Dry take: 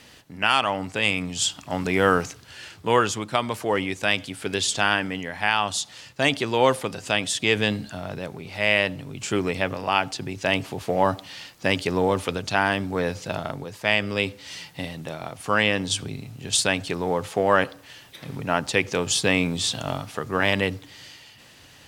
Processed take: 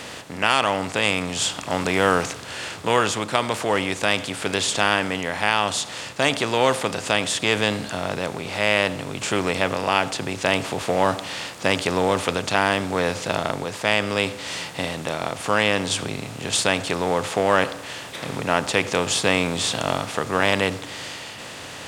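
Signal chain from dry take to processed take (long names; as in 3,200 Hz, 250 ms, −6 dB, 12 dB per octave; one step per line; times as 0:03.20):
compressor on every frequency bin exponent 0.6
parametric band 670 Hz +2.5 dB 0.26 octaves
level −2.5 dB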